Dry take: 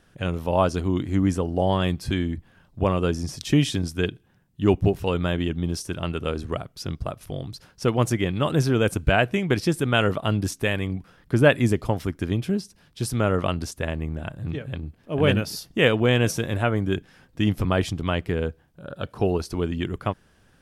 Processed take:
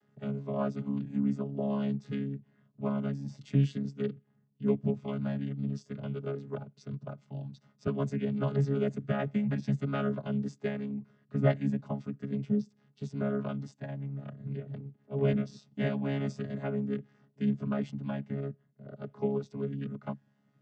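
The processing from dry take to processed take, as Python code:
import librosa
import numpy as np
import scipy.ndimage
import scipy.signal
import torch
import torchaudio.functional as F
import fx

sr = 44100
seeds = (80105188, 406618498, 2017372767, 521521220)

y = fx.chord_vocoder(x, sr, chord='bare fifth', root=49)
y = fx.band_squash(y, sr, depth_pct=40, at=(7.87, 10.24))
y = y * 10.0 ** (-7.5 / 20.0)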